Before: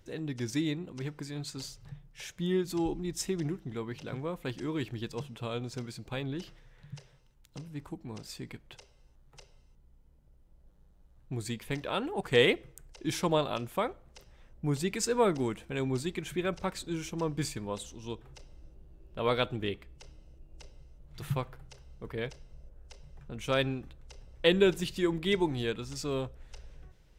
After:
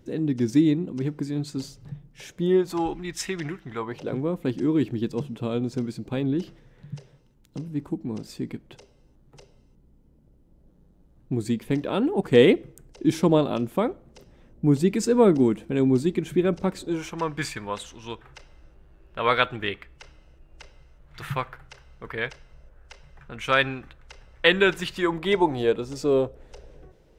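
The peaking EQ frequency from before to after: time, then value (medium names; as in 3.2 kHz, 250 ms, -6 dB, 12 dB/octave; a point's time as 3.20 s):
peaking EQ +14 dB 2.1 oct
2.25 s 250 Hz
3.00 s 1.9 kHz
3.64 s 1.9 kHz
4.21 s 260 Hz
16.73 s 260 Hz
17.17 s 1.6 kHz
24.74 s 1.6 kHz
25.92 s 430 Hz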